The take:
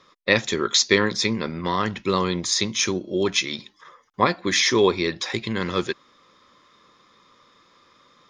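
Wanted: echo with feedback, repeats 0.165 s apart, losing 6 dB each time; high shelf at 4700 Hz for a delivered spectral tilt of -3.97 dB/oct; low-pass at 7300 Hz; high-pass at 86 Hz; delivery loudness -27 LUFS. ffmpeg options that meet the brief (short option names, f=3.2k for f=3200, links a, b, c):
-af "highpass=86,lowpass=7.3k,highshelf=f=4.7k:g=-8,aecho=1:1:165|330|495|660|825|990:0.501|0.251|0.125|0.0626|0.0313|0.0157,volume=-4.5dB"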